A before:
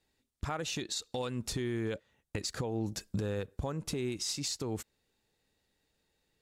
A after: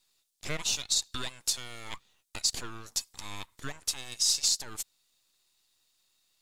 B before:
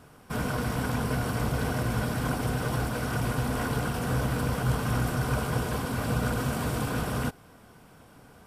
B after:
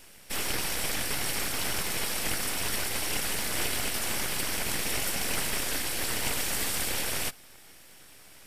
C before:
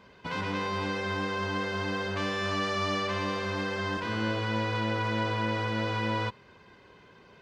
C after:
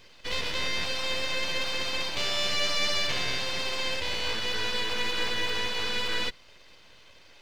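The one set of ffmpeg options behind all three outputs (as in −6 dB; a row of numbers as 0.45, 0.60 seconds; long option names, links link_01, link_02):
-filter_complex "[0:a]highpass=frequency=600:width=0.5412,highpass=frequency=600:width=1.3066,acrossover=split=3000[link_01][link_02];[link_01]aeval=exprs='abs(val(0))':channel_layout=same[link_03];[link_02]acontrast=35[link_04];[link_03][link_04]amix=inputs=2:normalize=0,volume=5.5dB"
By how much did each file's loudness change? +6.0, 0.0, +2.0 LU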